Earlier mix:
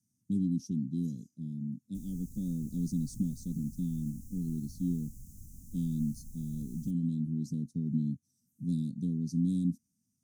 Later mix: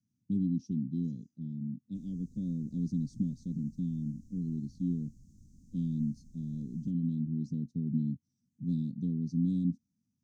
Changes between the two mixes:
background: add low-shelf EQ 140 Hz −10.5 dB
master: add high-frequency loss of the air 170 metres

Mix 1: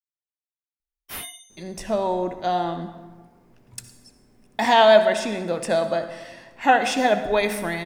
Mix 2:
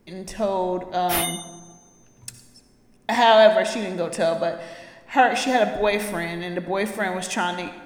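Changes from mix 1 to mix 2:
speech: entry −1.50 s
background +10.0 dB

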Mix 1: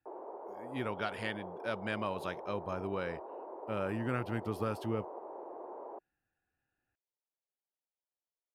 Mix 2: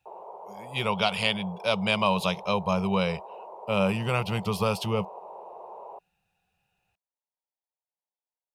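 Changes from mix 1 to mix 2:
speech +9.0 dB
master: add drawn EQ curve 130 Hz 0 dB, 190 Hz +10 dB, 270 Hz −19 dB, 420 Hz −1 dB, 980 Hz +7 dB, 1,700 Hz −10 dB, 2,500 Hz +10 dB, 5,500 Hz +10 dB, 15,000 Hz +5 dB

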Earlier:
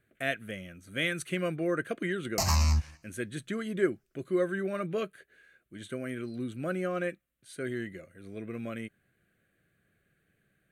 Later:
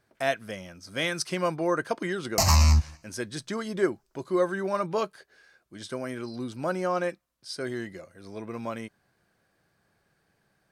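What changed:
speech: remove phaser with its sweep stopped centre 2,200 Hz, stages 4
background +6.0 dB

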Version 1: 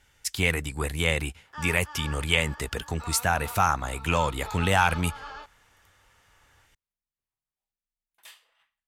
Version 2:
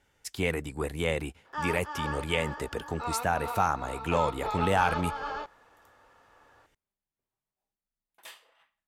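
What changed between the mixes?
speech −9.5 dB
master: add parametric band 400 Hz +10.5 dB 3 octaves

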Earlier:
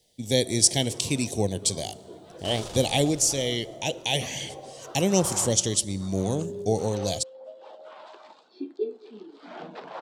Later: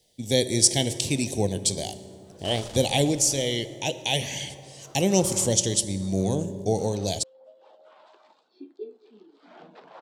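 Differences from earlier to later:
speech: send +7.0 dB
first sound −8.5 dB
second sound: send −9.5 dB

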